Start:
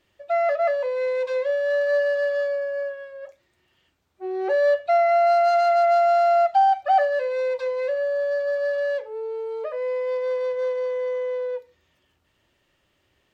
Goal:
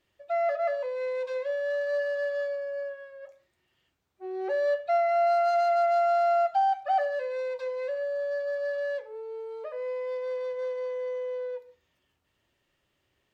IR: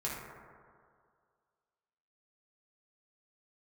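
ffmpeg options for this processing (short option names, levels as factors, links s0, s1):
-filter_complex "[0:a]asplit=2[s0][s1];[s1]aemphasis=mode=production:type=cd[s2];[1:a]atrim=start_sample=2205,afade=t=out:st=0.23:d=0.01,atrim=end_sample=10584[s3];[s2][s3]afir=irnorm=-1:irlink=0,volume=0.178[s4];[s0][s4]amix=inputs=2:normalize=0,volume=0.398"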